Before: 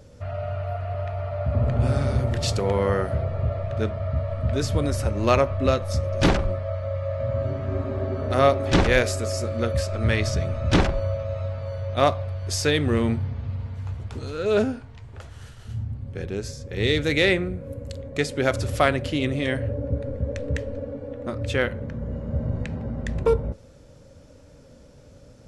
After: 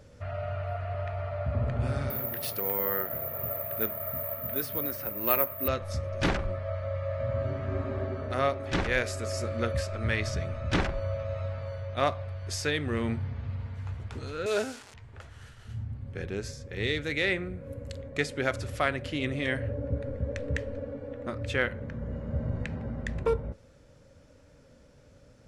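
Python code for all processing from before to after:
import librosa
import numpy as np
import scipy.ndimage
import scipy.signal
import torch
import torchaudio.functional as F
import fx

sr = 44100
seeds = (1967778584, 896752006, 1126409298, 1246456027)

y = fx.chain(x, sr, fx.highpass(hz=190.0, slope=12),
    fx.air_absorb(metres=65.0),
    fx.resample_bad(factor=3, down='filtered', up='zero_stuff'), at=(2.1, 5.68))
y = fx.chain(y, sr, fx.delta_mod(bps=64000, step_db=-37.0),
    fx.lowpass(hz=8200.0, slope=12),
    fx.bass_treble(bass_db=-13, treble_db=12), at=(14.46, 14.94))
y = fx.peak_eq(y, sr, hz=1800.0, db=5.5, octaves=1.4)
y = fx.rider(y, sr, range_db=3, speed_s=0.5)
y = F.gain(torch.from_numpy(y), -8.0).numpy()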